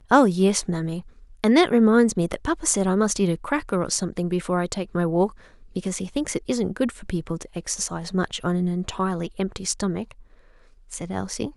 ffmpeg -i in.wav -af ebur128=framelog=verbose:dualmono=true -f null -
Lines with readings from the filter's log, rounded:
Integrated loudness:
  I:         -20.5 LUFS
  Threshold: -31.0 LUFS
Loudness range:
  LRA:         6.7 LU
  Threshold: -41.4 LUFS
  LRA low:   -24.7 LUFS
  LRA high:  -18.0 LUFS